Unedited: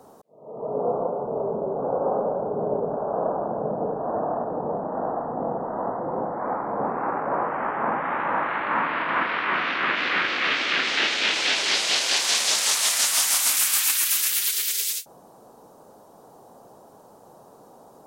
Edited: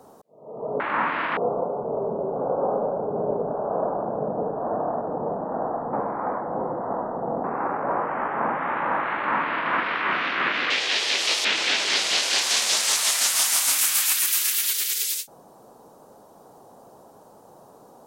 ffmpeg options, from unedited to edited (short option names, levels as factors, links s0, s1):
-filter_complex "[0:a]asplit=7[s0][s1][s2][s3][s4][s5][s6];[s0]atrim=end=0.802[s7];[s1]atrim=start=8.568:end=9.142[s8];[s2]atrim=start=0.798:end=5.362[s9];[s3]atrim=start=5.358:end=6.872,asetpts=PTS-STARTPTS,areverse[s10];[s4]atrim=start=6.868:end=10.134[s11];[s5]atrim=start=10.13:end=11.23,asetpts=PTS-STARTPTS,asetrate=64827,aresample=44100[s12];[s6]atrim=start=11.226[s13];[s7][s8]acrossfade=d=0.004:c1=hsin:c2=hsin[s14];[s14][s9]acrossfade=d=0.004:c1=hsin:c2=hsin[s15];[s15][s10]acrossfade=d=0.004:c1=hsin:c2=hsin[s16];[s16][s11]acrossfade=d=0.004:c1=hsin:c2=hsin[s17];[s17][s12]acrossfade=d=0.004:c1=hsin:c2=hsin[s18];[s18][s13]acrossfade=d=0.004:c1=hsin:c2=hsin"